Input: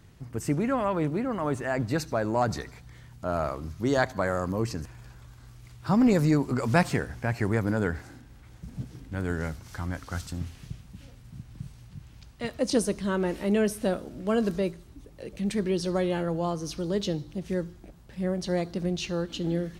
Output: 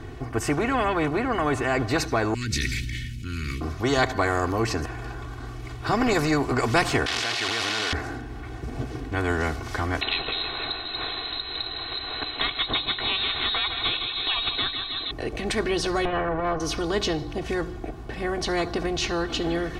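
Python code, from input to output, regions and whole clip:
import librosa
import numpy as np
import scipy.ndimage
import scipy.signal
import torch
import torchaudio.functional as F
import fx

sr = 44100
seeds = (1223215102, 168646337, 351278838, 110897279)

y = fx.chain(x, sr, fx.cheby1_bandstop(low_hz=210.0, high_hz=2300.0, order=3),
    fx.sustainer(db_per_s=23.0), at=(2.34, 3.61))
y = fx.chain(y, sr, fx.delta_mod(bps=64000, step_db=-23.5),
    fx.bandpass_q(hz=3700.0, q=1.9),
    fx.env_flatten(amount_pct=100), at=(7.06, 7.93))
y = fx.chain(y, sr, fx.echo_feedback(ms=157, feedback_pct=54, wet_db=-13.0),
    fx.freq_invert(carrier_hz=4000),
    fx.band_squash(depth_pct=70), at=(10.01, 15.11))
y = fx.chain(y, sr, fx.lower_of_two(delay_ms=1.7),
    fx.lowpass(hz=1600.0, slope=12),
    fx.transient(attack_db=-10, sustain_db=0), at=(16.05, 16.6))
y = fx.lowpass(y, sr, hz=1300.0, slope=6)
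y = y + 0.92 * np.pad(y, (int(2.7 * sr / 1000.0), 0))[:len(y)]
y = fx.spectral_comp(y, sr, ratio=2.0)
y = y * librosa.db_to_amplitude(2.5)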